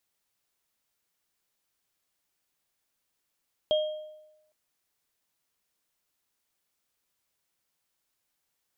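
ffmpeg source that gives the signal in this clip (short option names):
-f lavfi -i "aevalsrc='0.1*pow(10,-3*t/0.97)*sin(2*PI*615*t)+0.0447*pow(10,-3*t/0.58)*sin(2*PI*3230*t)':d=0.81:s=44100"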